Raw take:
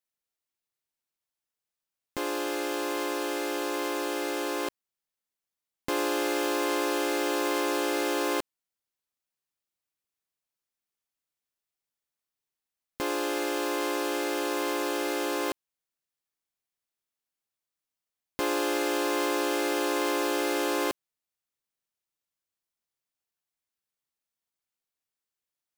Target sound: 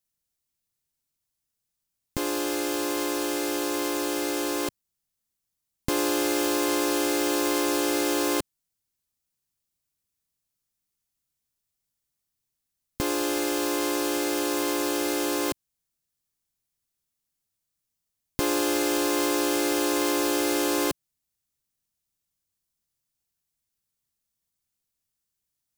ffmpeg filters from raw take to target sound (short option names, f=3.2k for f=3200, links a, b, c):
-af "bass=f=250:g=14,treble=f=4k:g=8"